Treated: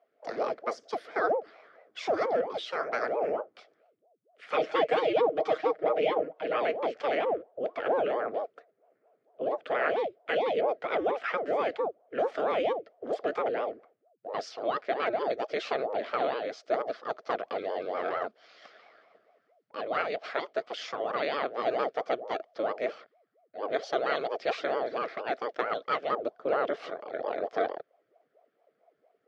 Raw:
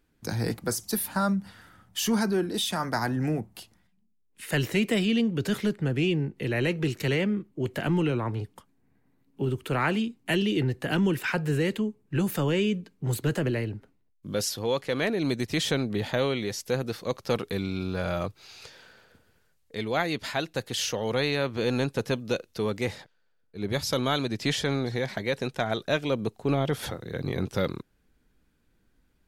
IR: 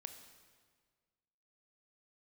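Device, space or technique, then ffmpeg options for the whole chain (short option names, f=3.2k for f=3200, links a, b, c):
voice changer toy: -filter_complex "[0:a]aeval=exprs='val(0)*sin(2*PI*420*n/s+420*0.75/4.4*sin(2*PI*4.4*n/s))':c=same,highpass=460,equalizer=f=460:t=q:w=4:g=7,equalizer=f=660:t=q:w=4:g=9,equalizer=f=940:t=q:w=4:g=-10,equalizer=f=1.3k:t=q:w=4:g=5,equalizer=f=2.7k:t=q:w=4:g=-6,equalizer=f=3.9k:t=q:w=4:g=-8,lowpass=f=4.1k:w=0.5412,lowpass=f=4.1k:w=1.3066,asettb=1/sr,asplit=3[a][b][c];[a]atrim=end=4.504[d];[b]atrim=start=4.5:end=6.58,asetpts=PTS-STARTPTS,afade=t=in:d=0.004:c=qsin,afade=t=out:st=2.076:d=0.004:c=qsin,aecho=1:1:6.4:0.61,atrim=end_sample=91728[e];[c]atrim=start=6.576[f];[d][e]acrossfade=d=0.004:c1=hsin:c2=qsin[g];[g][f]acrossfade=d=0.004:c1=qsin:c2=hsin"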